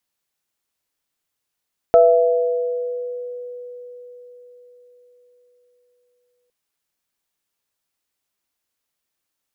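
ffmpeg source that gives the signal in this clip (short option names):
-f lavfi -i "aevalsrc='0.282*pow(10,-3*t/4.86)*sin(2*PI*491*t)+0.398*pow(10,-3*t/1.67)*sin(2*PI*669*t)+0.0562*pow(10,-3*t/0.37)*sin(2*PI*1310*t)':d=4.56:s=44100"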